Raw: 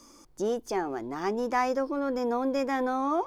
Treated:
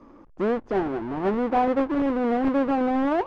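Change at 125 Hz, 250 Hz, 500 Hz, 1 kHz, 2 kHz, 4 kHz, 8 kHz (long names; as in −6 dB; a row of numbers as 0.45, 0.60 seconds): +10.0 dB, +7.5 dB, +4.0 dB, +3.5 dB, +2.0 dB, −1.0 dB, below −10 dB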